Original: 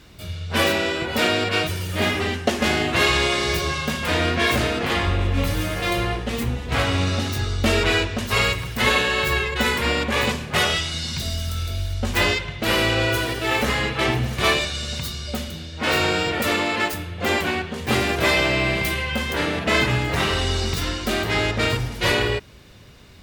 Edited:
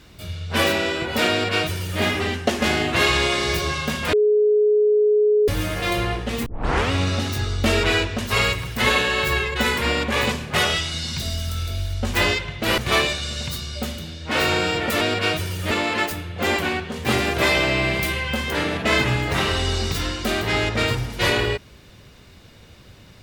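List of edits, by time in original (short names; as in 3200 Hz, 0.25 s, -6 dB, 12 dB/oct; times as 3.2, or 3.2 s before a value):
1.31–2.01 copy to 16.53
4.13–5.48 bleep 421 Hz -13.5 dBFS
6.46 tape start 0.45 s
12.78–14.3 cut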